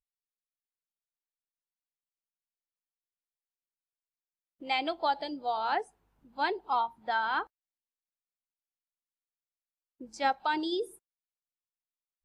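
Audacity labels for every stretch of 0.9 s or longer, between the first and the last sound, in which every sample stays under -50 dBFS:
7.470000	10.010000	silence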